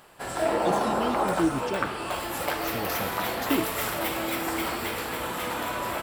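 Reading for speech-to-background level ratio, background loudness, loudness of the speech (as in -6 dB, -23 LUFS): -4.0 dB, -28.5 LUFS, -32.5 LUFS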